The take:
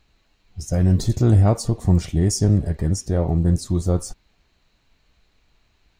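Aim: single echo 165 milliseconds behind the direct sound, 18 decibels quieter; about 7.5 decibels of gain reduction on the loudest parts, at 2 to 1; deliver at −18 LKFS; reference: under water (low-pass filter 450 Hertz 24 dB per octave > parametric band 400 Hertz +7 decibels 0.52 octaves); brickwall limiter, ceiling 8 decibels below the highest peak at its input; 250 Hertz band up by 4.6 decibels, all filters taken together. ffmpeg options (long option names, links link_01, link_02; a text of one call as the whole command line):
ffmpeg -i in.wav -af "equalizer=frequency=250:width_type=o:gain=5.5,acompressor=threshold=-23dB:ratio=2,alimiter=limit=-18dB:level=0:latency=1,lowpass=frequency=450:width=0.5412,lowpass=frequency=450:width=1.3066,equalizer=frequency=400:width_type=o:width=0.52:gain=7,aecho=1:1:165:0.126,volume=10.5dB" out.wav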